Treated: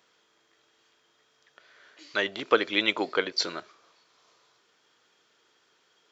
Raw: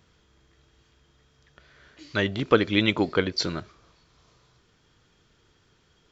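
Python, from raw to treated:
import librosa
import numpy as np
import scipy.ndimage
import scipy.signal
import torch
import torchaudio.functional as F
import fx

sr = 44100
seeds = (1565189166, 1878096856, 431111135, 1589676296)

y = scipy.signal.sosfilt(scipy.signal.butter(2, 460.0, 'highpass', fs=sr, output='sos'), x)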